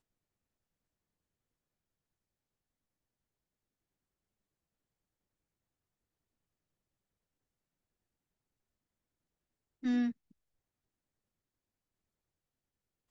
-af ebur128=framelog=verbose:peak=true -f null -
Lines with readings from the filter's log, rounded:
Integrated loudness:
  I:         -34.3 LUFS
  Threshold: -44.9 LUFS
Loudness range:
  LRA:         1.8 LU
  Threshold: -61.7 LUFS
  LRA low:   -43.0 LUFS
  LRA high:  -41.3 LUFS
True peak:
  Peak:      -24.0 dBFS